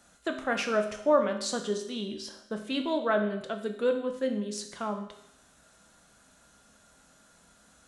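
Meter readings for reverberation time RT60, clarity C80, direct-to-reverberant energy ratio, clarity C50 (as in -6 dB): 0.75 s, 11.0 dB, 4.0 dB, 8.5 dB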